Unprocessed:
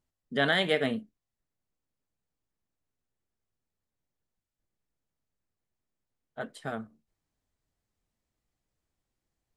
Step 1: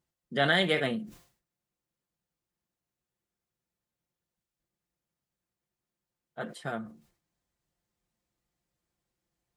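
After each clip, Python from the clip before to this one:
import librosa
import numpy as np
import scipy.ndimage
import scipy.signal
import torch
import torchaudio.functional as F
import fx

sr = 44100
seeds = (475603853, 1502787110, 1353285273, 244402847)

y = scipy.signal.sosfilt(scipy.signal.butter(2, 48.0, 'highpass', fs=sr, output='sos'), x)
y = y + 0.48 * np.pad(y, (int(5.7 * sr / 1000.0), 0))[:len(y)]
y = fx.sustainer(y, sr, db_per_s=120.0)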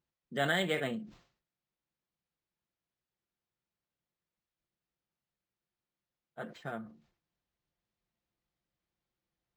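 y = np.interp(np.arange(len(x)), np.arange(len(x))[::4], x[::4])
y = F.gain(torch.from_numpy(y), -5.0).numpy()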